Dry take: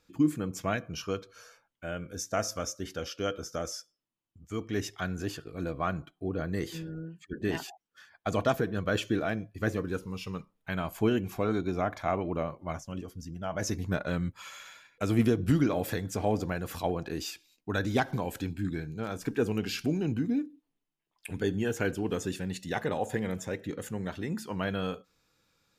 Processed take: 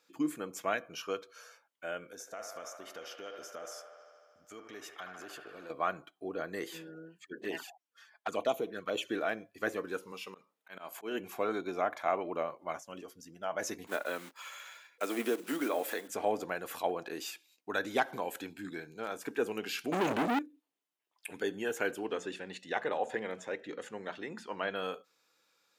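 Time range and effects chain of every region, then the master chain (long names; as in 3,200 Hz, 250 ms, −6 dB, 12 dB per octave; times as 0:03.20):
0:02.12–0:05.70: downward compressor 5 to 1, threshold −39 dBFS + delay with a band-pass on its return 76 ms, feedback 79%, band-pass 1,100 Hz, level −4 dB
0:07.41–0:09.09: high-pass filter 120 Hz 6 dB per octave + flanger swept by the level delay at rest 5.3 ms, full sweep at −25.5 dBFS
0:10.12–0:11.20: high-pass filter 170 Hz + volume swells 167 ms
0:13.87–0:16.09: one scale factor per block 5 bits + high-pass filter 230 Hz 24 dB per octave
0:19.92–0:20.39: low-pass filter 8,900 Hz + leveller curve on the samples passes 5
0:22.06–0:24.76: low-pass filter 5,100 Hz + mains-hum notches 60/120/180/240 Hz
whole clip: high-pass filter 430 Hz 12 dB per octave; dynamic equaliser 5,200 Hz, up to −6 dB, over −57 dBFS, Q 1.7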